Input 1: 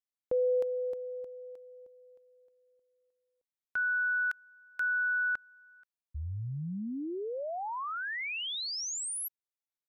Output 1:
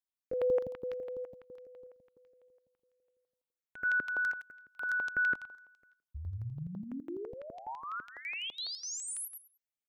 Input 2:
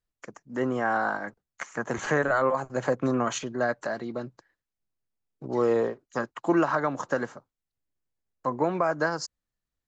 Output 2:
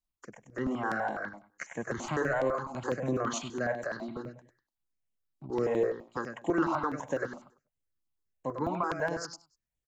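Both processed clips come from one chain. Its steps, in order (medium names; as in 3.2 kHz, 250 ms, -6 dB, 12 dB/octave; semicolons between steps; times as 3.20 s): feedback delay 98 ms, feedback 22%, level -7 dB; stepped phaser 12 Hz 450–4800 Hz; trim -2.5 dB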